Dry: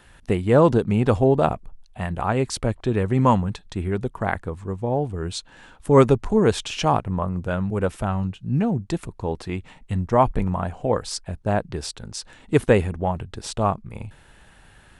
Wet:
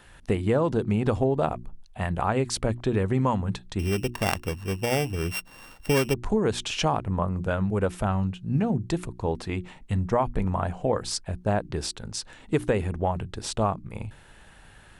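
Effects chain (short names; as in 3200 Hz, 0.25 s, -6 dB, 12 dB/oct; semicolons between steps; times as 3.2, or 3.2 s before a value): 3.79–6.14 sample sorter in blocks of 16 samples; notches 60/120/180/240/300/360 Hz; compressor 10:1, threshold -19 dBFS, peak gain reduction 11 dB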